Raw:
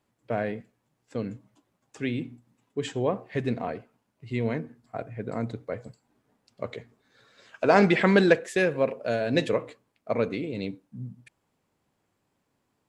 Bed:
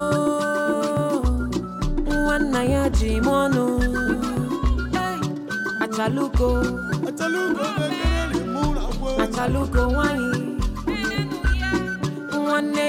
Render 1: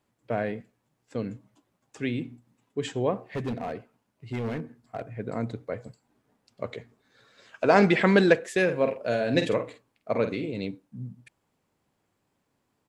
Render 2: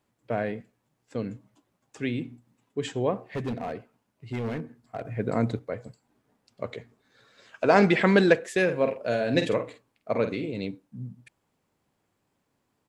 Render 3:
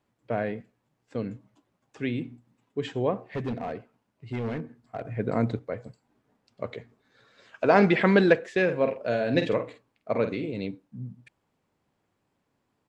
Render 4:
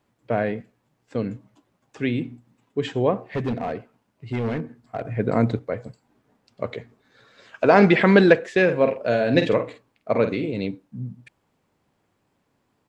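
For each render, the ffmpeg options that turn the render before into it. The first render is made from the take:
-filter_complex "[0:a]asettb=1/sr,asplit=3[a][b][c];[a]atrim=end=3.184[d];[b]atrim=start=3.18:end=5.09,asetpts=PTS-STARTPTS,afade=t=in:d=0.004:c=qsin,afade=t=out:st=1.906:d=0.004:c=qsin,asoftclip=type=hard:threshold=-26.5dB[e];[c]atrim=start=5.086[f];[d][e]acrossfade=d=0.004:c1=hsin:c2=qsin[g];[g][f]acrossfade=d=0.004:c1=qsin:c2=hsin,asplit=3[h][i][j];[h]afade=t=out:st=8.67:d=0.02[k];[i]asplit=2[l][m];[m]adelay=49,volume=-8dB[n];[l][n]amix=inputs=2:normalize=0,afade=t=in:st=8.67:d=0.02,afade=t=out:st=10.5:d=0.02[o];[j]afade=t=in:st=10.5:d=0.02[p];[k][o][p]amix=inputs=3:normalize=0"
-filter_complex "[0:a]asplit=3[a][b][c];[a]atrim=end=5.052[d];[b]atrim=start=5.048:end=5.592,asetpts=PTS-STARTPTS,volume=5.5dB[e];[c]atrim=start=5.588[f];[d][e]acrossfade=d=0.004:c1=hsin:c2=hsin[g];[g][f]acrossfade=d=0.004:c1=hsin:c2=hsin"
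-filter_complex "[0:a]acrossover=split=6100[a][b];[b]acompressor=threshold=-60dB:ratio=4:attack=1:release=60[c];[a][c]amix=inputs=2:normalize=0,highshelf=f=7.4k:g=-10.5"
-af "volume=5.5dB,alimiter=limit=-2dB:level=0:latency=1"

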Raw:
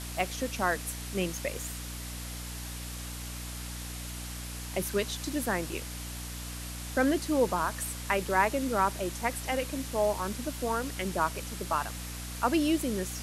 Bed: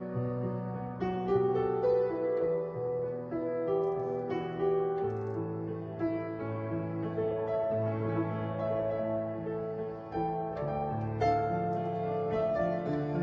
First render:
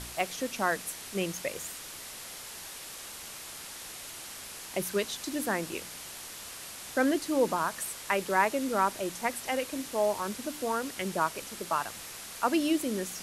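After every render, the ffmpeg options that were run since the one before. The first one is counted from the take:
-af "bandreject=f=60:t=h:w=4,bandreject=f=120:t=h:w=4,bandreject=f=180:t=h:w=4,bandreject=f=240:t=h:w=4,bandreject=f=300:t=h:w=4"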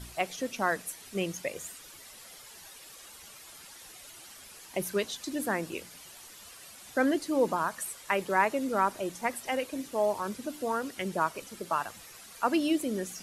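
-af "afftdn=nr=10:nf=-44"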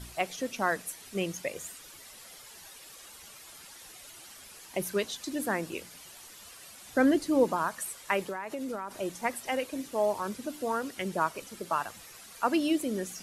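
-filter_complex "[0:a]asettb=1/sr,asplit=3[a][b][c];[a]atrim=end=6.924[d];[b]atrim=start=6.92:end=7.44,asetpts=PTS-STARTPTS,afade=t=in:d=0.004:c=qsin,afade=t=out:st=0.516:d=0.004:c=qsin,lowshelf=f=230:g=9.5[e];[c]atrim=start=7.436[f];[d][e]acrossfade=d=0.004:c1=hsin:c2=qsin[g];[g][f]acrossfade=d=0.004:c1=qsin:c2=hsin,asplit=3[h][i][j];[h]afade=t=out:st=8.23:d=0.02[k];[i]acompressor=threshold=-31dB:ratio=16:attack=3.2:release=140:knee=1:detection=peak,afade=t=in:st=8.23:d=0.02,afade=t=out:st=8.9:d=0.02[l];[j]afade=t=in:st=8.9:d=0.02[m];[k][l][m]amix=inputs=3:normalize=0"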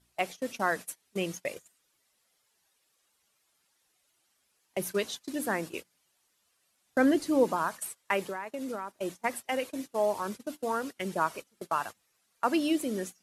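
-af "agate=range=-24dB:threshold=-37dB:ratio=16:detection=peak,lowshelf=f=62:g=-9.5"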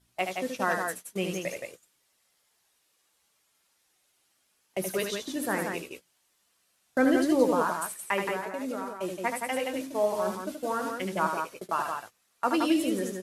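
-filter_complex "[0:a]asplit=2[a][b];[b]adelay=16,volume=-10.5dB[c];[a][c]amix=inputs=2:normalize=0,aecho=1:1:75.8|172:0.501|0.562"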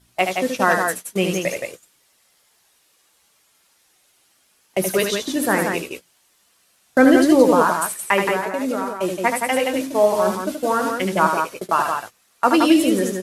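-af "volume=10.5dB,alimiter=limit=-2dB:level=0:latency=1"

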